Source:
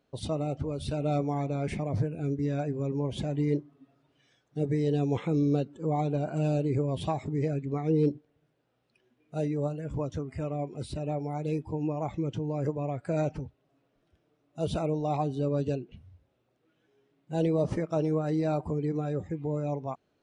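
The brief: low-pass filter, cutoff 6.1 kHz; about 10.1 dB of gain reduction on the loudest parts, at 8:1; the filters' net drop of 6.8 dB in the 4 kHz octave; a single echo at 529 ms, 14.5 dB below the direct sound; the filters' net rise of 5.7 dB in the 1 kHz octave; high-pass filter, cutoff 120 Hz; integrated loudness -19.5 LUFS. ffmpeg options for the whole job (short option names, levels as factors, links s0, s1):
-af "highpass=120,lowpass=6100,equalizer=f=1000:t=o:g=9,equalizer=f=4000:t=o:g=-8.5,acompressor=threshold=0.0282:ratio=8,aecho=1:1:529:0.188,volume=7.08"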